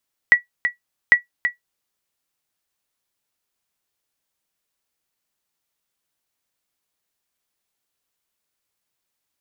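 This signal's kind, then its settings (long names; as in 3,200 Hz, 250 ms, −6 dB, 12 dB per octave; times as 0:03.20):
ping with an echo 1,940 Hz, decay 0.13 s, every 0.80 s, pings 2, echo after 0.33 s, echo −9 dB −2 dBFS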